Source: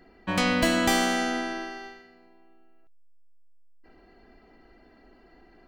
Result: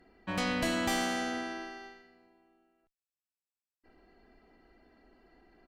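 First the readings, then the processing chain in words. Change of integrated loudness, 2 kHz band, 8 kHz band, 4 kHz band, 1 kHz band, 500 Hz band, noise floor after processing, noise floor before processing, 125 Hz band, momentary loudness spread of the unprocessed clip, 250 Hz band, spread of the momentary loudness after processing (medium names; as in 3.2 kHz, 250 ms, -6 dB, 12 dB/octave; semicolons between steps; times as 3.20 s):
-7.5 dB, -7.5 dB, -7.5 dB, -7.5 dB, -7.5 dB, -7.5 dB, under -85 dBFS, -57 dBFS, -7.0 dB, 14 LU, -7.5 dB, 16 LU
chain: resampled via 32 kHz; valve stage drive 17 dB, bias 0.35; trim -5.5 dB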